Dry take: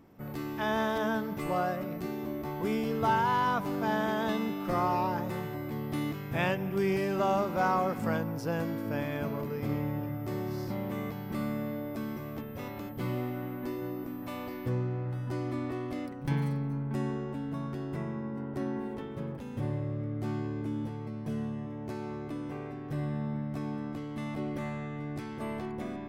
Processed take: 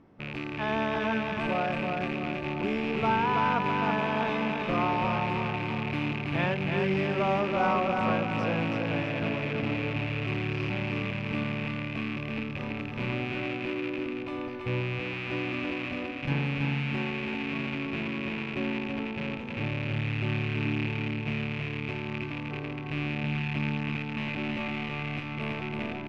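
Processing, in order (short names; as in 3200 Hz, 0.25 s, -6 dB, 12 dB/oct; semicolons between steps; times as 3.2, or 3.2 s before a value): rattling part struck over -38 dBFS, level -24 dBFS; LPF 3700 Hz 12 dB/oct; feedback echo 0.328 s, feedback 52%, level -4 dB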